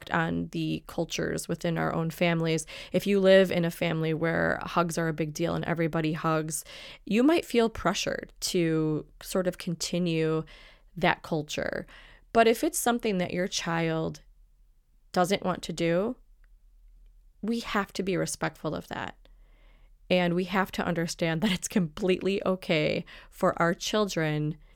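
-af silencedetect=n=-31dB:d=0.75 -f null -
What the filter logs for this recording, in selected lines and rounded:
silence_start: 14.15
silence_end: 15.14 | silence_duration: 0.99
silence_start: 16.12
silence_end: 17.44 | silence_duration: 1.32
silence_start: 19.10
silence_end: 20.11 | silence_duration: 1.01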